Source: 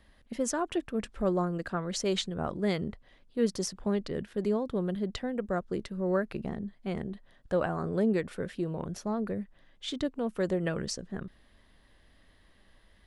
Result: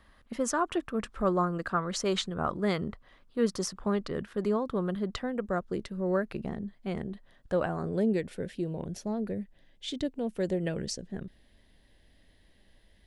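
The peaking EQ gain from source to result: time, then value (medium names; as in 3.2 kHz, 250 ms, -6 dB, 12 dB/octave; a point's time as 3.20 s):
peaking EQ 1.2 kHz 0.7 oct
5.12 s +9 dB
5.77 s 0 dB
7.59 s 0 dB
8.21 s -11.5 dB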